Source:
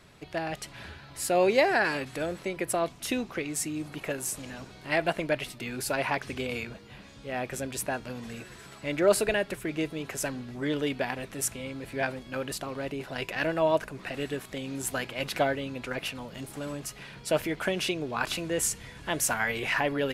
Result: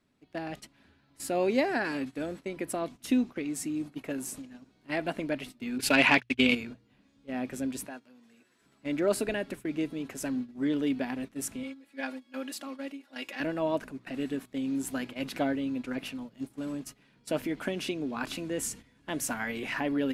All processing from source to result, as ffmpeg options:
ffmpeg -i in.wav -filter_complex "[0:a]asettb=1/sr,asplit=3[link_01][link_02][link_03];[link_01]atrim=end=5.784[link_04];[link_02]atrim=start=5.78:end=6.55,asetpts=PTS-STARTPTS,afade=type=in:duration=0.004:curve=qsin,afade=type=out:start_time=0.766:duration=0.004:curve=qsin,agate=range=-48dB:threshold=-35dB:ratio=16:release=100:detection=peak,equalizer=frequency=2800:width_type=o:width=1.5:gain=13.5,acontrast=74[link_05];[link_03]atrim=start=6.546[link_06];[link_04][link_05]acrossfade=duration=0.004:curve1=hsin:curve2=qsin[link_07];[link_07][link_06]acrossfade=duration=0.004:curve1=qsin:curve2=hsin,asettb=1/sr,asplit=3[link_08][link_09][link_10];[link_08]atrim=end=7.854[link_11];[link_09]atrim=start=7.85:end=8.62,asetpts=PTS-STARTPTS,afade=type=in:duration=0.004:curve=qsin,afade=type=out:start_time=0.766:duration=0.004:curve=qsin,highpass=frequency=550:poles=1,acompressor=threshold=-36dB:ratio=2:attack=3.2:release=140:knee=1:detection=peak[link_12];[link_10]atrim=start=8.616[link_13];[link_11][link_12]acrossfade=duration=0.004:curve1=hsin:curve2=qsin[link_14];[link_14][link_13]acrossfade=duration=0.004:curve1=qsin:curve2=hsin,asettb=1/sr,asplit=3[link_15][link_16][link_17];[link_15]atrim=end=11.634[link_18];[link_16]atrim=start=11.63:end=13.4,asetpts=PTS-STARTPTS,afade=type=in:duration=0.004:curve=qsin,afade=type=out:start_time=1.766:duration=0.004:curve=qsin,highpass=frequency=830:poles=1,aecho=1:1:3.6:0.85,atrim=end_sample=78057[link_19];[link_17]atrim=start=13.396[link_20];[link_18][link_19]acrossfade=duration=0.004:curve1=hsin:curve2=qsin[link_21];[link_21][link_20]acrossfade=duration=0.004:curve1=qsin:curve2=hsin,agate=range=-14dB:threshold=-38dB:ratio=16:detection=peak,equalizer=frequency=260:width_type=o:width=0.57:gain=14,bandreject=frequency=60:width_type=h:width=6,bandreject=frequency=120:width_type=h:width=6,volume=-6.5dB" out.wav

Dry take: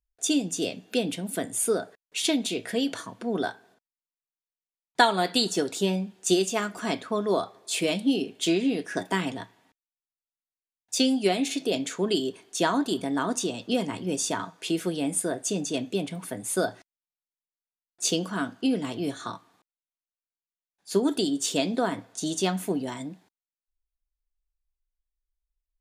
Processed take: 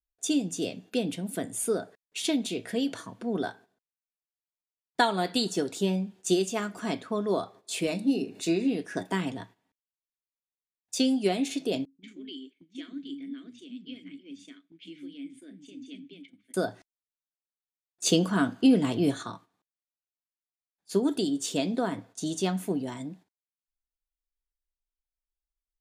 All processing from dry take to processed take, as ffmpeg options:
ffmpeg -i in.wav -filter_complex "[0:a]asettb=1/sr,asplit=3[link_01][link_02][link_03];[link_01]atrim=end=7.874[link_04];[link_02]atrim=start=7.87:end=8.68,asetpts=PTS-STARTPTS,afade=type=in:duration=0.004:curve=qsin,afade=type=out:start_time=0.806:duration=0.004:curve=qsin,asuperstop=centerf=3200:order=4:qfactor=5.2,acompressor=mode=upward:threshold=-32dB:ratio=2.5:attack=3.2:release=140:knee=2.83:detection=peak,bandreject=frequency=50:width_type=h:width=6,bandreject=frequency=100:width_type=h:width=6,bandreject=frequency=150:width_type=h:width=6,bandreject=frequency=200:width_type=h:width=6,bandreject=frequency=250:width_type=h:width=6,bandreject=frequency=300:width_type=h:width=6,bandreject=frequency=350:width_type=h:width=6[link_05];[link_03]atrim=start=8.676[link_06];[link_04][link_05]acrossfade=duration=0.004:curve1=hsin:curve2=qsin[link_07];[link_07][link_06]acrossfade=duration=0.004:curve1=qsin:curve2=hsin,asettb=1/sr,asplit=3[link_08][link_09][link_10];[link_08]atrim=end=11.854[link_11];[link_09]atrim=start=11.85:end=16.54,asetpts=PTS-STARTPTS,afade=type=in:duration=0.004:curve=qsin,afade=type=out:start_time=4.686:duration=0.004:curve=qsin,asplit=3[link_12][link_13][link_14];[link_12]bandpass=frequency=270:width_type=q:width=8,volume=0dB[link_15];[link_13]bandpass=frequency=2290:width_type=q:width=8,volume=-6dB[link_16];[link_14]bandpass=frequency=3010:width_type=q:width=8,volume=-9dB[link_17];[link_15][link_16][link_17]amix=inputs=3:normalize=0,tiltshelf=frequency=930:gain=-4,acrossover=split=260|5800[link_18][link_19][link_20];[link_19]adelay=170[link_21];[link_20]adelay=210[link_22];[link_18][link_21][link_22]amix=inputs=3:normalize=0,atrim=end_sample=206829[link_23];[link_10]atrim=start=16.536[link_24];[link_11][link_23]acrossfade=duration=0.004:curve1=hsin:curve2=qsin[link_25];[link_25][link_24]acrossfade=duration=0.004:curve1=qsin:curve2=hsin,asettb=1/sr,asplit=3[link_26][link_27][link_28];[link_26]atrim=end=18.064[link_29];[link_27]atrim=start=18.06:end=19.23,asetpts=PTS-STARTPTS,afade=type=in:duration=0.004:curve=qsin,afade=type=out:start_time=1.166:duration=0.004:curve=qsin,acontrast=65,bandreject=frequency=5600:width=15[link_30];[link_28]atrim=start=19.226[link_31];[link_29][link_30]acrossfade=duration=0.004:curve1=hsin:curve2=qsin[link_32];[link_32][link_31]acrossfade=duration=0.004:curve1=qsin:curve2=hsin,lowshelf=frequency=360:gain=6,agate=range=-10dB:threshold=-45dB:ratio=16:detection=peak,volume=-5dB" out.wav

